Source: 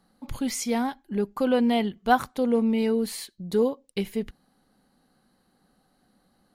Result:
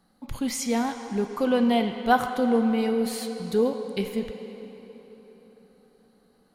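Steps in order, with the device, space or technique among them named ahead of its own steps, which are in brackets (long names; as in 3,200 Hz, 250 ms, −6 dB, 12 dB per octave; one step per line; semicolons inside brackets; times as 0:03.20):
filtered reverb send (on a send: high-pass filter 460 Hz 6 dB per octave + low-pass filter 7,600 Hz 12 dB per octave + convolution reverb RT60 4.0 s, pre-delay 11 ms, DRR 5.5 dB)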